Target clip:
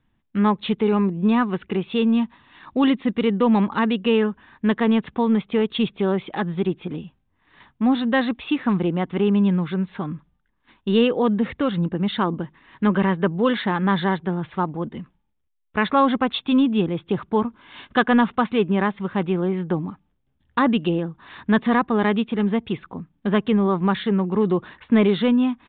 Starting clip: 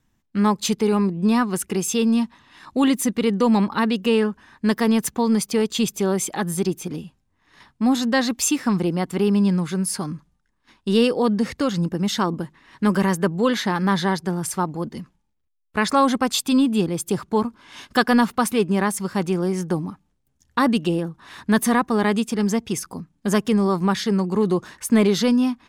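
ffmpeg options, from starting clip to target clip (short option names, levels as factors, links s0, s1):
-af "aresample=8000,aresample=44100"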